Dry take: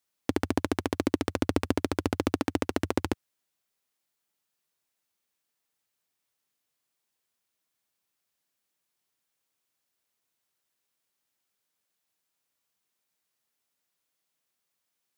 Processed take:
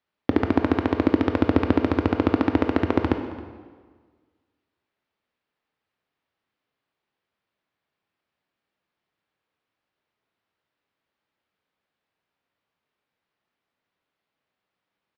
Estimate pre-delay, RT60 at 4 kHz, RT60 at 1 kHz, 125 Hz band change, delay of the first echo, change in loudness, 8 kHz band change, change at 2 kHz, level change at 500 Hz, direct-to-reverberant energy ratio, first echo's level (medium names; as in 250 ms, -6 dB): 17 ms, 1.2 s, 1.6 s, +7.5 dB, 270 ms, +7.5 dB, under -15 dB, +5.0 dB, +6.5 dB, 6.0 dB, -19.5 dB